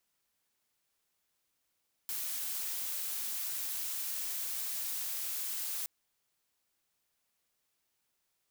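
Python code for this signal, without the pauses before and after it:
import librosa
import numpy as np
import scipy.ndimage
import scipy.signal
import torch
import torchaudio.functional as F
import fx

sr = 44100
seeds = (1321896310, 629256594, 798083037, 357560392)

y = fx.noise_colour(sr, seeds[0], length_s=3.77, colour='blue', level_db=-37.0)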